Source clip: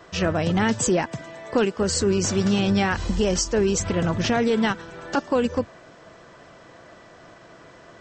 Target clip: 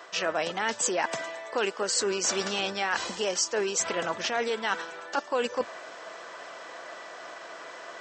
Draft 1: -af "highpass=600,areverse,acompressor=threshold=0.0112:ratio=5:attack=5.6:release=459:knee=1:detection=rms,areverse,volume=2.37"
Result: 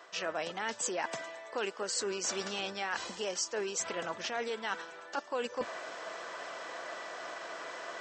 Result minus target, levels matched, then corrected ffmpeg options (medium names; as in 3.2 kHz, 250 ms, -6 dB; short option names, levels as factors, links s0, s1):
compression: peak gain reduction +7 dB
-af "highpass=600,areverse,acompressor=threshold=0.0316:ratio=5:attack=5.6:release=459:knee=1:detection=rms,areverse,volume=2.37"